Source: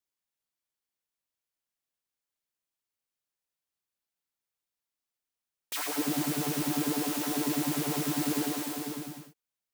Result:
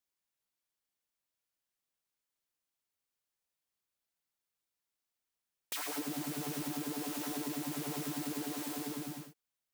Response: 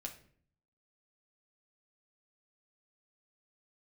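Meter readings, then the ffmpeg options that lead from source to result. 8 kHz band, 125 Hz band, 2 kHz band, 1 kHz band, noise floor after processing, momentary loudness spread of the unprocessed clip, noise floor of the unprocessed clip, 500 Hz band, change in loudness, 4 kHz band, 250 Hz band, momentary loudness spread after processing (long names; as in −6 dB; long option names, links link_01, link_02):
−7.5 dB, −8.5 dB, −7.0 dB, −7.5 dB, below −85 dBFS, 8 LU, below −85 dBFS, −7.5 dB, −7.5 dB, −7.0 dB, −8.0 dB, 4 LU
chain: -af "acompressor=threshold=-36dB:ratio=5"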